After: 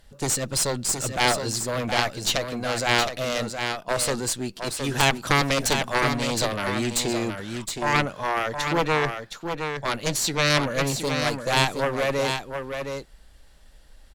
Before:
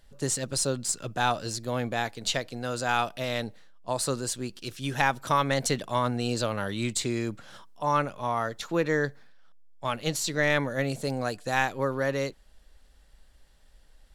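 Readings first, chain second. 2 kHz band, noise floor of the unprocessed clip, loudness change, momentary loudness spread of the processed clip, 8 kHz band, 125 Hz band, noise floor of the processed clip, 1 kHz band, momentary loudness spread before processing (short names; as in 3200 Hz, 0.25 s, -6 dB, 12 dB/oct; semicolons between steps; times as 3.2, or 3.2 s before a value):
+5.5 dB, -57 dBFS, +4.5 dB, 8 LU, +6.0 dB, +3.5 dB, -51 dBFS, +3.0 dB, 8 LU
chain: added harmonics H 3 -11 dB, 5 -21 dB, 6 -16 dB, 7 -12 dB, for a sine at -6 dBFS; echo 0.717 s -6.5 dB; gain +4.5 dB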